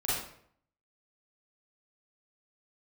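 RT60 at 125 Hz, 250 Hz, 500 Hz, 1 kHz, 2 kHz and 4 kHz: 0.75 s, 0.65 s, 0.65 s, 0.60 s, 0.55 s, 0.45 s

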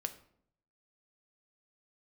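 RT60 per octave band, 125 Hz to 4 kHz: 0.90 s, 0.80 s, 0.70 s, 0.60 s, 0.50 s, 0.40 s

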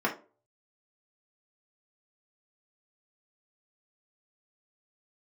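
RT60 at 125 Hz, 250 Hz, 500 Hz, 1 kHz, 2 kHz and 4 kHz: 0.45 s, 0.40 s, 0.40 s, 0.30 s, 0.25 s, 0.20 s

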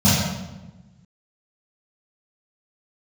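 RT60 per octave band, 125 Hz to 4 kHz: 1.7 s, 1.5 s, 1.1 s, 1.0 s, 0.85 s, 0.80 s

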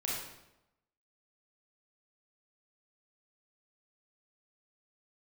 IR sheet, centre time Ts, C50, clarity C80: 67 ms, -0.5 dB, 3.5 dB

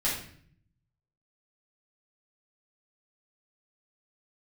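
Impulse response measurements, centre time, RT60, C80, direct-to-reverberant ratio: 40 ms, 0.55 s, 8.0 dB, -8.5 dB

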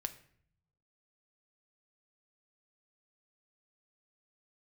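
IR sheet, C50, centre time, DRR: 14.5 dB, 6 ms, 8.0 dB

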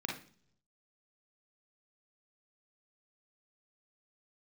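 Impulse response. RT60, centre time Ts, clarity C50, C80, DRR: 0.55 s, 31 ms, 3.0 dB, 12.5 dB, -1.0 dB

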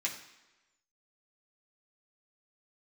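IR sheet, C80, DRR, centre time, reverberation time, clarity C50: 11.0 dB, -4.0 dB, 22 ms, 1.1 s, 8.5 dB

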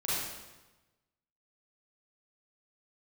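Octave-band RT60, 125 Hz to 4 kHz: 1.4 s, 1.2 s, 1.1 s, 1.1 s, 1.0 s, 0.95 s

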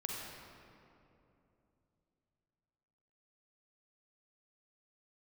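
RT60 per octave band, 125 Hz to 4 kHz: 3.9 s, 3.6 s, 3.2 s, 2.6 s, 2.1 s, 1.5 s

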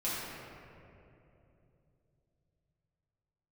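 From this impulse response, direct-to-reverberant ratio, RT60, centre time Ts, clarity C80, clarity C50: -10.0 dB, 2.9 s, 158 ms, -1.0 dB, -3.0 dB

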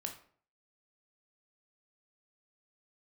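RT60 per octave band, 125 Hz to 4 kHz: 0.55 s, 0.55 s, 0.55 s, 0.50 s, 0.40 s, 0.35 s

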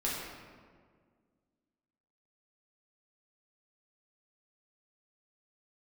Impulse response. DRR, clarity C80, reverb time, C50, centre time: -6.5 dB, 2.0 dB, 1.8 s, -0.5 dB, 94 ms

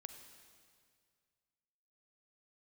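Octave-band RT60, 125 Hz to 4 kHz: 2.4 s, 2.1 s, 2.1 s, 2.0 s, 2.0 s, 1.9 s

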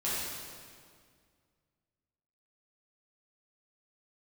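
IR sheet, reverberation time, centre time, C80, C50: 2.0 s, 131 ms, -1.0 dB, -3.5 dB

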